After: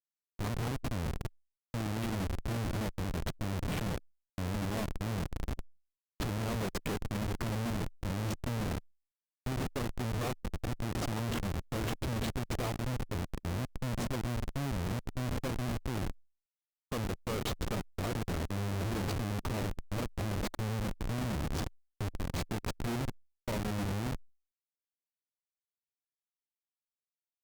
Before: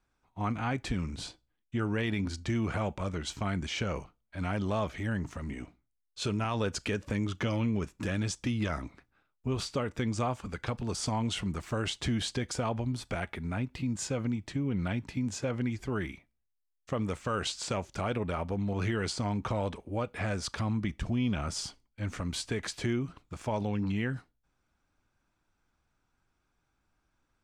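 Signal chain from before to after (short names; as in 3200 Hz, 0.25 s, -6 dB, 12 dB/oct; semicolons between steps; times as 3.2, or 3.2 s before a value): split-band echo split 450 Hz, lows 0.11 s, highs 0.403 s, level -10 dB; Schmitt trigger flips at -30 dBFS; Opus 64 kbps 48000 Hz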